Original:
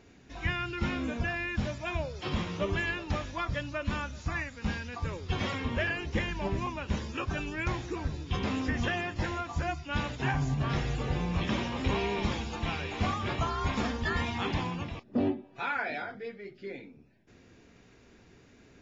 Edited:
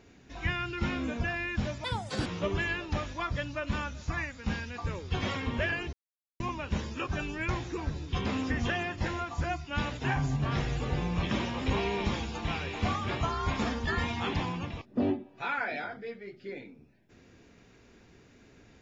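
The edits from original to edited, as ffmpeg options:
ffmpeg -i in.wav -filter_complex "[0:a]asplit=5[link_01][link_02][link_03][link_04][link_05];[link_01]atrim=end=1.844[link_06];[link_02]atrim=start=1.84:end=2.44,asetpts=PTS-STARTPTS,asetrate=63063,aresample=44100,atrim=end_sample=18503,asetpts=PTS-STARTPTS[link_07];[link_03]atrim=start=2.436:end=6.11,asetpts=PTS-STARTPTS,afade=type=out:start_time=3.67:duration=0.004:curve=hsin[link_08];[link_04]atrim=start=6.11:end=6.58,asetpts=PTS-STARTPTS,volume=0[link_09];[link_05]atrim=start=6.58,asetpts=PTS-STARTPTS,afade=type=in:duration=0.004:curve=hsin[link_10];[link_06][link_07]acrossfade=duration=0.004:curve1=hsin:curve2=hsin[link_11];[link_08][link_09][link_10]concat=n=3:v=0:a=1[link_12];[link_11][link_12]acrossfade=duration=0.004:curve1=hsin:curve2=hsin" out.wav

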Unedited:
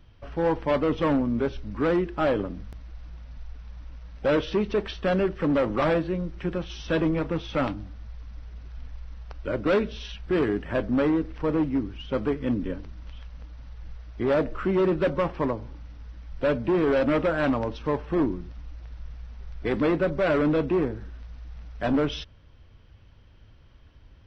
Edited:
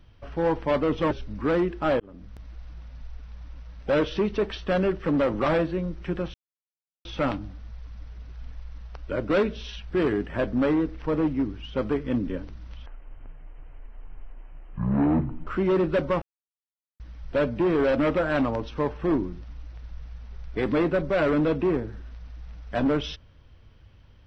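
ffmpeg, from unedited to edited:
ffmpeg -i in.wav -filter_complex "[0:a]asplit=9[link_01][link_02][link_03][link_04][link_05][link_06][link_07][link_08][link_09];[link_01]atrim=end=1.112[link_10];[link_02]atrim=start=1.468:end=2.36,asetpts=PTS-STARTPTS,afade=type=out:start_time=0.888:duration=0.004:curve=hsin[link_11];[link_03]atrim=start=2.36:end=6.7,asetpts=PTS-STARTPTS,afade=type=in:duration=0.48,afade=type=out:start_time=4.336:duration=0.004:curve=hsin[link_12];[link_04]atrim=start=6.7:end=7.41,asetpts=PTS-STARTPTS,volume=0[link_13];[link_05]atrim=start=7.41:end=13.224,asetpts=PTS-STARTPTS,afade=type=in:duration=0.004:curve=hsin[link_14];[link_06]atrim=start=13.22:end=14.55,asetpts=PTS-STARTPTS,asetrate=22491,aresample=44100[link_15];[link_07]atrim=start=14.546:end=15.3,asetpts=PTS-STARTPTS,afade=type=out:start_time=0.75:duration=0.004:curve=hsin[link_16];[link_08]atrim=start=15.3:end=16.08,asetpts=PTS-STARTPTS,volume=0[link_17];[link_09]atrim=start=16.08,asetpts=PTS-STARTPTS,afade=type=in:duration=0.004:curve=hsin[link_18];[link_11][link_12][link_13][link_14]concat=n=4:v=0:a=1[link_19];[link_10][link_19]acrossfade=duration=0.004:curve1=hsin:curve2=hsin[link_20];[link_20][link_15]acrossfade=duration=0.004:curve1=hsin:curve2=hsin[link_21];[link_16][link_17][link_18]concat=n=3:v=0:a=1[link_22];[link_21][link_22]acrossfade=duration=0.004:curve1=hsin:curve2=hsin" out.wav

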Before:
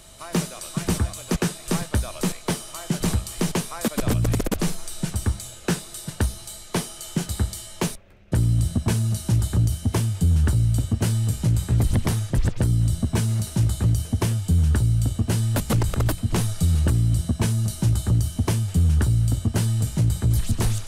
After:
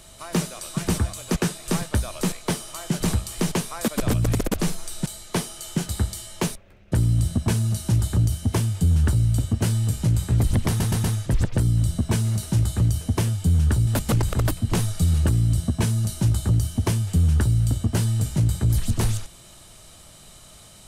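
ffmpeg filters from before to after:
ffmpeg -i in.wav -filter_complex "[0:a]asplit=6[link_01][link_02][link_03][link_04][link_05][link_06];[link_01]atrim=end=5.062[link_07];[link_02]atrim=start=6.458:end=12.202[link_08];[link_03]atrim=start=12.078:end=12.202[link_09];[link_04]atrim=start=12.078:end=12.202[link_10];[link_05]atrim=start=12.078:end=14.912[link_11];[link_06]atrim=start=15.478[link_12];[link_07][link_08]acrossfade=duration=0.004:curve1=hsin:curve2=hsin[link_13];[link_13][link_09]acrossfade=duration=0.004:curve1=hsin:curve2=hsin[link_14];[link_14][link_10]acrossfade=duration=0.004:curve1=hsin:curve2=hsin[link_15];[link_15][link_11]acrossfade=duration=0.004:curve1=hsin:curve2=hsin[link_16];[link_16][link_12]acrossfade=duration=0.004:curve1=hsin:curve2=hsin" out.wav

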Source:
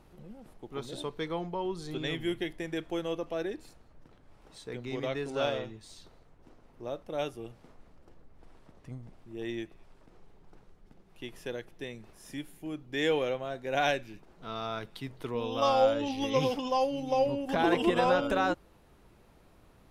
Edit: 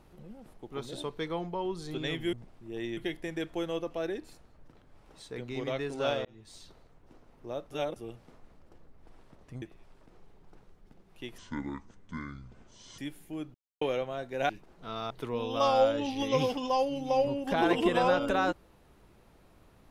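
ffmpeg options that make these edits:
ffmpeg -i in.wav -filter_complex "[0:a]asplit=13[link_01][link_02][link_03][link_04][link_05][link_06][link_07][link_08][link_09][link_10][link_11][link_12][link_13];[link_01]atrim=end=2.332[link_14];[link_02]atrim=start=8.978:end=9.622[link_15];[link_03]atrim=start=2.328:end=5.61,asetpts=PTS-STARTPTS,afade=type=out:start_time=3.278:duration=0.004:curve=hsin[link_16];[link_04]atrim=start=5.61:end=7.072,asetpts=PTS-STARTPTS,afade=type=in:duration=0.27[link_17];[link_05]atrim=start=7.068:end=7.322,asetpts=PTS-STARTPTS,areverse[link_18];[link_06]atrim=start=7.318:end=8.982[link_19];[link_07]atrim=start=9.618:end=11.384[link_20];[link_08]atrim=start=11.38:end=12.31,asetpts=PTS-STARTPTS,asetrate=25578,aresample=44100,atrim=end_sample=70712,asetpts=PTS-STARTPTS[link_21];[link_09]atrim=start=12.306:end=12.87,asetpts=PTS-STARTPTS,afade=type=out:start_time=0.56:duration=0.004:curve=hsin[link_22];[link_10]atrim=start=12.87:end=13.14,asetpts=PTS-STARTPTS,volume=0[link_23];[link_11]atrim=start=13.14:end=13.822,asetpts=PTS-STARTPTS,afade=type=in:duration=0.004:curve=hsin[link_24];[link_12]atrim=start=14.088:end=14.702[link_25];[link_13]atrim=start=15.118[link_26];[link_14][link_15]acrossfade=duration=0.004:curve1=hsin:curve2=hsin[link_27];[link_16][link_17]concat=n=2:v=0:a=1[link_28];[link_27][link_28]acrossfade=duration=0.004:curve1=hsin:curve2=hsin[link_29];[link_29][link_18]acrossfade=duration=0.004:curve1=hsin:curve2=hsin[link_30];[link_30][link_19]acrossfade=duration=0.004:curve1=hsin:curve2=hsin[link_31];[link_31][link_20]acrossfade=duration=0.004:curve1=hsin:curve2=hsin[link_32];[link_32][link_21]acrossfade=duration=0.004:curve1=hsin:curve2=hsin[link_33];[link_22][link_23][link_24]concat=n=3:v=0:a=1[link_34];[link_33][link_34]acrossfade=duration=0.004:curve1=hsin:curve2=hsin[link_35];[link_35][link_25]acrossfade=duration=0.004:curve1=hsin:curve2=hsin[link_36];[link_36][link_26]acrossfade=duration=0.004:curve1=hsin:curve2=hsin" out.wav

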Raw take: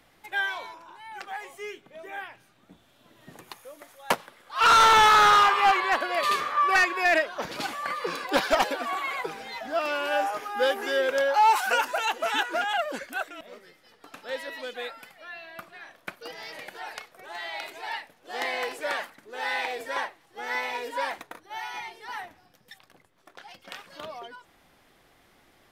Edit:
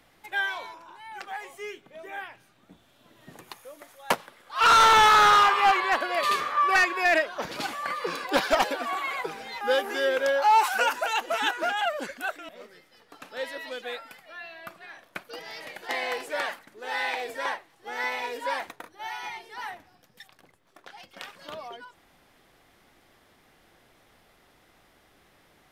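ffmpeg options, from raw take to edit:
ffmpeg -i in.wav -filter_complex "[0:a]asplit=3[link_01][link_02][link_03];[link_01]atrim=end=9.612[link_04];[link_02]atrim=start=10.528:end=16.812[link_05];[link_03]atrim=start=18.398[link_06];[link_04][link_05]acrossfade=duration=0.004:curve1=hsin:curve2=hsin[link_07];[link_07][link_06]acrossfade=duration=0.004:curve1=hsin:curve2=hsin" out.wav

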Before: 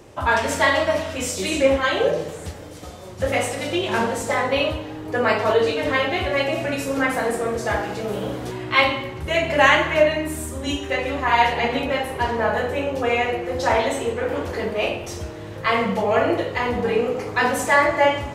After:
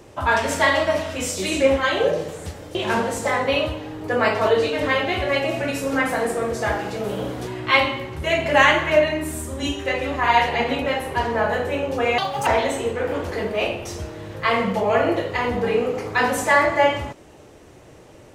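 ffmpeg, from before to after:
ffmpeg -i in.wav -filter_complex "[0:a]asplit=4[link_01][link_02][link_03][link_04];[link_01]atrim=end=2.752[link_05];[link_02]atrim=start=3.788:end=13.224[link_06];[link_03]atrim=start=13.22:end=13.68,asetpts=PTS-STARTPTS,asetrate=70560,aresample=44100[link_07];[link_04]atrim=start=13.676[link_08];[link_05][link_06]acrossfade=duration=0.004:curve1=hsin:curve2=hsin[link_09];[link_09][link_07]acrossfade=duration=0.004:curve1=hsin:curve2=hsin[link_10];[link_10][link_08]acrossfade=duration=0.004:curve1=hsin:curve2=hsin" out.wav

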